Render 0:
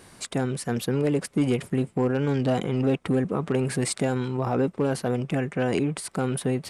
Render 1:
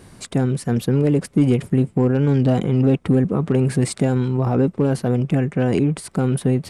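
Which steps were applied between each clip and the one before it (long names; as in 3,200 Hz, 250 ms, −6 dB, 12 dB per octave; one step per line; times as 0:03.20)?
low-shelf EQ 350 Hz +11 dB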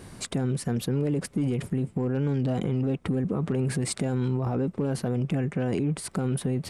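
brickwall limiter −15.5 dBFS, peak gain reduction 9 dB
downward compressor 1.5 to 1, threshold −28 dBFS, peak gain reduction 3.5 dB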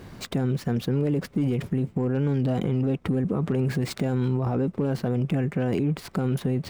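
running median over 5 samples
level +2 dB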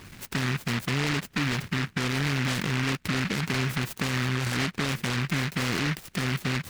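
in parallel at −8 dB: bit reduction 7 bits
on the sum: short delay modulated by noise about 1,800 Hz, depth 0.44 ms
level −6 dB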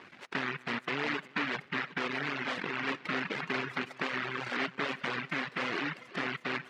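feedback delay that plays each chunk backwards 183 ms, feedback 72%, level −11 dB
band-pass filter 360–2,600 Hz
reverb reduction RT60 1.1 s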